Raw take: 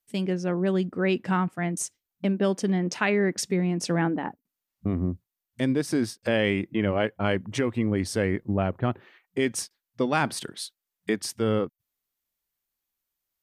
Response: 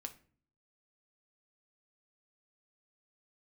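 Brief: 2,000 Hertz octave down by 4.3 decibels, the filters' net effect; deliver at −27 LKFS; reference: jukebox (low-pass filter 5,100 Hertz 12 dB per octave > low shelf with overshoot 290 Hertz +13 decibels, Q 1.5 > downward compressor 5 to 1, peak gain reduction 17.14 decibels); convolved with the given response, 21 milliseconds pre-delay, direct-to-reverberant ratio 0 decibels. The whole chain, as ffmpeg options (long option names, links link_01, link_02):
-filter_complex "[0:a]equalizer=frequency=2000:width_type=o:gain=-5,asplit=2[link_01][link_02];[1:a]atrim=start_sample=2205,adelay=21[link_03];[link_02][link_03]afir=irnorm=-1:irlink=0,volume=3.5dB[link_04];[link_01][link_04]amix=inputs=2:normalize=0,lowpass=5100,lowshelf=frequency=290:width_type=q:width=1.5:gain=13,acompressor=threshold=-22dB:ratio=5,volume=-1.5dB"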